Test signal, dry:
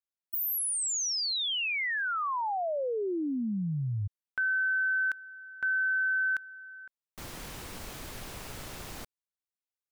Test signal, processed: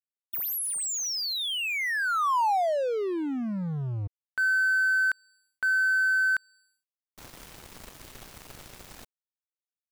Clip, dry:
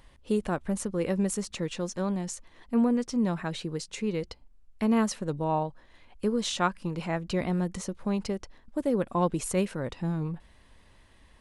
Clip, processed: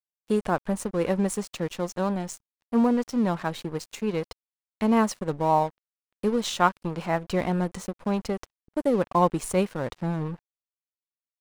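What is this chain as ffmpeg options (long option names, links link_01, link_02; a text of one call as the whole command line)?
ffmpeg -i in.wav -af "adynamicequalizer=threshold=0.00631:dfrequency=890:dqfactor=0.92:tfrequency=890:tqfactor=0.92:attack=5:release=100:ratio=0.333:range=3:mode=boostabove:tftype=bell,acontrast=42,aeval=exprs='sgn(val(0))*max(abs(val(0))-0.015,0)':channel_layout=same,volume=-3dB" out.wav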